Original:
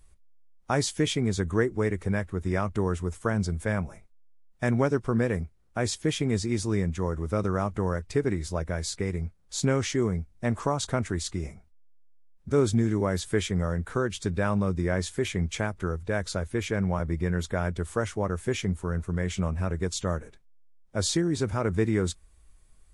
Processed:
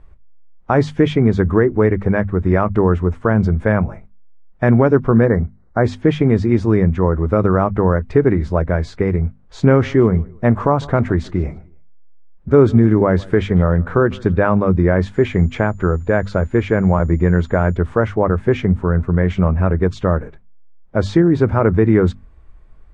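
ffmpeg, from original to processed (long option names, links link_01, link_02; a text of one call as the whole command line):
ffmpeg -i in.wav -filter_complex "[0:a]asplit=3[link_01][link_02][link_03];[link_01]afade=type=out:start_time=5.25:duration=0.02[link_04];[link_02]asuperstop=centerf=2900:order=20:qfactor=1.9,afade=type=in:start_time=5.25:duration=0.02,afade=type=out:start_time=5.83:duration=0.02[link_05];[link_03]afade=type=in:start_time=5.83:duration=0.02[link_06];[link_04][link_05][link_06]amix=inputs=3:normalize=0,asettb=1/sr,asplit=3[link_07][link_08][link_09];[link_07]atrim=end=9.624[link_10];[link_08]atrim=start=9.62:end=14.38,asetpts=PTS-STARTPTS,afade=type=in:duration=0.004:curve=qsin,afade=type=out:start_time=4.756:duration=0.004:curve=qsin,aecho=1:1:152|304:0.0631|0.0196,atrim=end_sample=209916[link_11];[link_09]atrim=start=14.376[link_12];[link_10][link_11]acrossfade=duration=0.004:curve1=hsin:curve2=qsin[link_13];[link_13][link_12]acrossfade=duration=0.004:curve1=qsin:curve2=hsin,asettb=1/sr,asplit=3[link_14][link_15][link_16];[link_14]atrim=end=15.144[link_17];[link_15]atrim=start=15.14:end=17.77,asetpts=PTS-STARTPTS,afade=type=in:duration=0.004:curve=qsin,afade=type=out:start_time=2.626:duration=0.004:curve=qsin,aeval=exprs='val(0)+0.00501*sin(2*PI*7000*n/s)':channel_layout=same[link_18];[link_16]atrim=start=17.766[link_19];[link_17][link_18]acrossfade=duration=0.004:curve1=hsin:curve2=qsin[link_20];[link_20][link_19]acrossfade=duration=0.004:curve1=qsin:curve2=hsin,lowpass=1600,bandreject=frequency=50:width_type=h:width=6,bandreject=frequency=100:width_type=h:width=6,bandreject=frequency=150:width_type=h:width=6,bandreject=frequency=200:width_type=h:width=6,bandreject=frequency=250:width_type=h:width=6,alimiter=level_in=14.5dB:limit=-1dB:release=50:level=0:latency=1,volume=-1dB" out.wav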